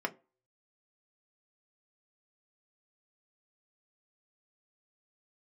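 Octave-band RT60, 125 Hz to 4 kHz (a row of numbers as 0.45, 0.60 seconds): 0.25, 0.30, 0.35, 0.30, 0.25, 0.15 seconds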